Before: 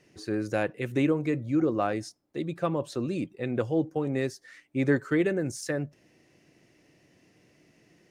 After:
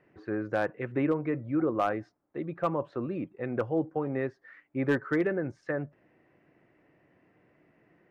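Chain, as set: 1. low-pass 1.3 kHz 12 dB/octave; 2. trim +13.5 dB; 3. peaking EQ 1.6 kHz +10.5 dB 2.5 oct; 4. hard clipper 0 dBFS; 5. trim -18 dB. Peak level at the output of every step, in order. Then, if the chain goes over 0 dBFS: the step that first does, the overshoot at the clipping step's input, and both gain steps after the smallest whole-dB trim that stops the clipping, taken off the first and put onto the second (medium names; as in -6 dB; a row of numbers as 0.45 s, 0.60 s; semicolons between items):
-12.5 dBFS, +1.0 dBFS, +5.0 dBFS, 0.0 dBFS, -18.0 dBFS; step 2, 5.0 dB; step 2 +8.5 dB, step 5 -13 dB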